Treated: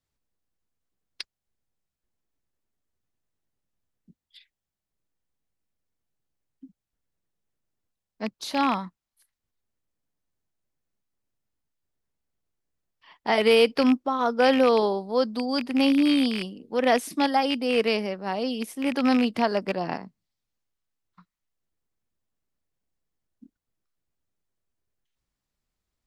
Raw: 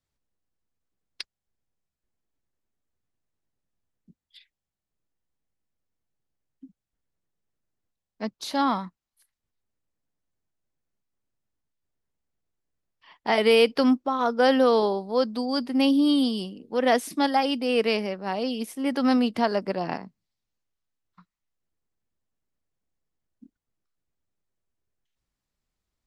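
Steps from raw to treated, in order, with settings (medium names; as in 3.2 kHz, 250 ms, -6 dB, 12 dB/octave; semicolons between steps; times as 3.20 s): rattle on loud lows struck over -32 dBFS, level -20 dBFS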